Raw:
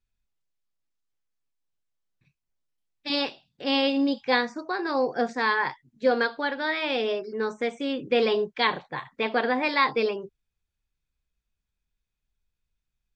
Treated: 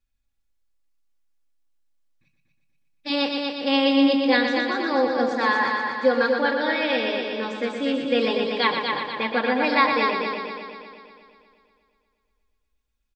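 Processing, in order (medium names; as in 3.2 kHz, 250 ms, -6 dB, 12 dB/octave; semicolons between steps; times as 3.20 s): comb 3.6 ms, depth 54%; multi-head delay 120 ms, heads first and second, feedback 58%, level -7 dB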